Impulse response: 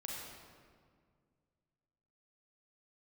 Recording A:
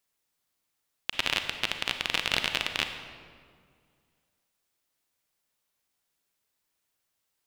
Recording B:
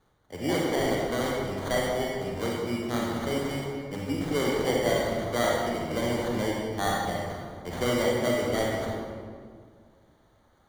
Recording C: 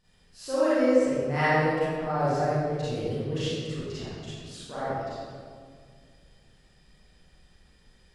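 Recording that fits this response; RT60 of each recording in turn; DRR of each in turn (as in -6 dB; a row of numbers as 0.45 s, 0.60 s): B; 2.0 s, 2.0 s, 2.0 s; 6.5 dB, -3.5 dB, -13.0 dB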